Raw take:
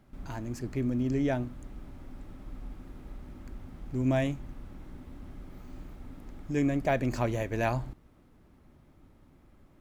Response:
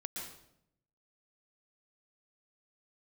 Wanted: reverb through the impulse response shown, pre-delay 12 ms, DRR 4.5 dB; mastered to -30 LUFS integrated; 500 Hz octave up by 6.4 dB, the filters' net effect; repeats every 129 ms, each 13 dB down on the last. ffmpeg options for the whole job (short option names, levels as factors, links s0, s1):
-filter_complex "[0:a]equalizer=f=500:t=o:g=8.5,aecho=1:1:129|258|387:0.224|0.0493|0.0108,asplit=2[s0][s1];[1:a]atrim=start_sample=2205,adelay=12[s2];[s1][s2]afir=irnorm=-1:irlink=0,volume=0.631[s3];[s0][s3]amix=inputs=2:normalize=0,volume=0.668"